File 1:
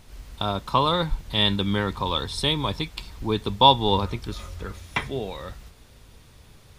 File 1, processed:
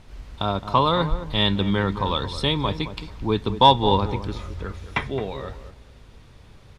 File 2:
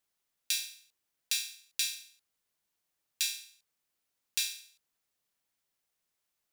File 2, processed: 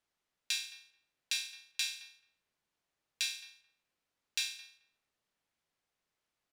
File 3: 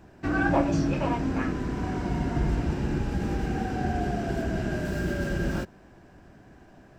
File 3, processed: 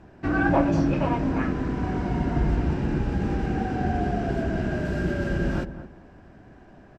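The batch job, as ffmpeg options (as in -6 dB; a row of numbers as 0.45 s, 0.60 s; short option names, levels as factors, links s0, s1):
-filter_complex "[0:a]asplit=2[s0][s1];[s1]asoftclip=type=hard:threshold=0.316,volume=0.422[s2];[s0][s2]amix=inputs=2:normalize=0,aemphasis=mode=reproduction:type=50fm,asplit=2[s3][s4];[s4]adelay=217,lowpass=f=1100:p=1,volume=0.282,asplit=2[s5][s6];[s6]adelay=217,lowpass=f=1100:p=1,volume=0.23,asplit=2[s7][s8];[s8]adelay=217,lowpass=f=1100:p=1,volume=0.23[s9];[s3][s5][s7][s9]amix=inputs=4:normalize=0,volume=0.891"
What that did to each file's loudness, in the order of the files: +1.0 LU, -3.5 LU, +2.5 LU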